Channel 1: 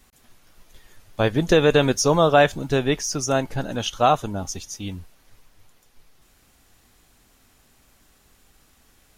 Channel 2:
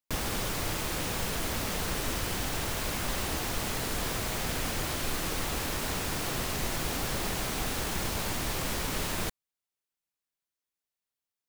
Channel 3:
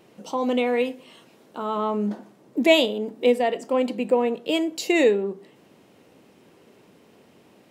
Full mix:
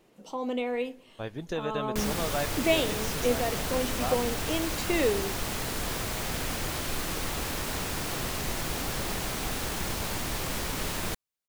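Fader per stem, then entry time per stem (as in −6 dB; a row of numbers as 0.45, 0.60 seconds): −16.5, 0.0, −8.0 decibels; 0.00, 1.85, 0.00 seconds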